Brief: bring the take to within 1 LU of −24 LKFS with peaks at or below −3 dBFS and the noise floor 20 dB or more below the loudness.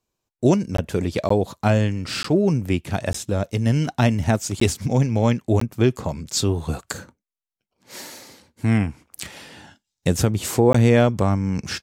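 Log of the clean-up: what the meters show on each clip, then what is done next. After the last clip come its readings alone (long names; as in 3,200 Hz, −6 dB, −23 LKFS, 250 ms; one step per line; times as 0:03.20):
number of dropouts 7; longest dropout 14 ms; integrated loudness −21.5 LKFS; sample peak −4.5 dBFS; target loudness −24.0 LKFS
→ repair the gap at 0:00.77/0:01.29/0:02.23/0:03.13/0:04.60/0:05.60/0:10.73, 14 ms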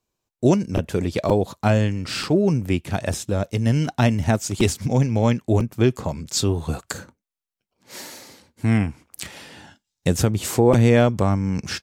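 number of dropouts 0; integrated loudness −21.0 LKFS; sample peak −4.5 dBFS; target loudness −24.0 LKFS
→ level −3 dB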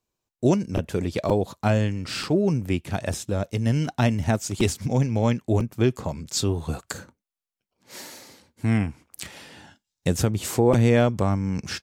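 integrated loudness −24.0 LKFS; sample peak −7.5 dBFS; background noise floor −87 dBFS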